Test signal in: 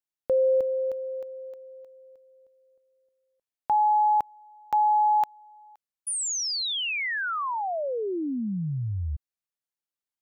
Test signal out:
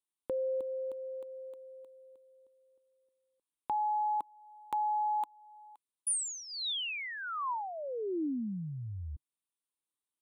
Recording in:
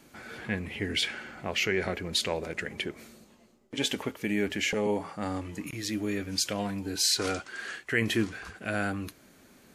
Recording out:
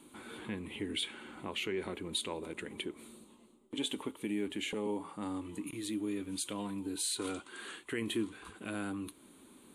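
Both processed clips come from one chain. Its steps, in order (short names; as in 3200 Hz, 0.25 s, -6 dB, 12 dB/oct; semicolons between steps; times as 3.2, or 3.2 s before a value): EQ curve 140 Hz 0 dB, 310 Hz +11 dB, 690 Hz -2 dB, 990 Hz +10 dB, 1700 Hz -3 dB, 3700 Hz +9 dB, 5300 Hz -10 dB, 9300 Hz +15 dB, 13000 Hz 0 dB; compressor 1.5:1, threshold -36 dBFS; gain -7.5 dB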